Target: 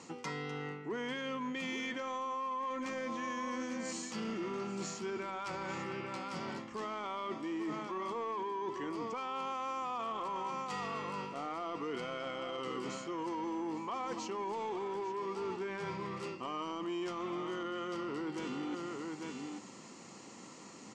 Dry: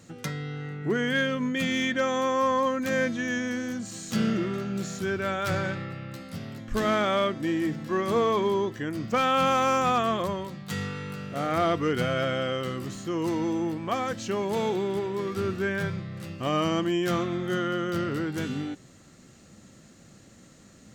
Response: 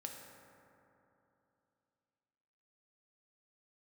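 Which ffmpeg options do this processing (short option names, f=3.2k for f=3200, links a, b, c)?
-filter_complex "[0:a]highpass=320,equalizer=f=600:t=q:w=4:g=-9,equalizer=f=970:t=q:w=4:g=10,equalizer=f=3.7k:t=q:w=4:g=-8,equalizer=f=6.3k:t=q:w=4:g=-3,lowpass=f=7.3k:w=0.5412,lowpass=f=7.3k:w=1.3066,asplit=2[a][b];[b]aecho=0:1:252|844:0.1|0.224[c];[a][c]amix=inputs=2:normalize=0,alimiter=limit=-23dB:level=0:latency=1:release=24,equalizer=f=1.6k:w=3.9:g=-10.5,asoftclip=type=tanh:threshold=-24dB,areverse,acompressor=threshold=-44dB:ratio=5,areverse,volume=6.5dB"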